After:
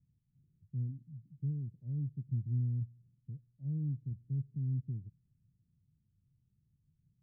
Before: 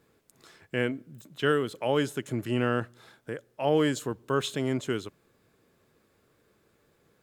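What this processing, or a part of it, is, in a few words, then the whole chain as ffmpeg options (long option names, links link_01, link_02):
the neighbour's flat through the wall: -af "lowpass=frequency=150:width=0.5412,lowpass=frequency=150:width=1.3066,equalizer=frequency=140:width_type=o:width=0.77:gain=4.5,volume=-1dB"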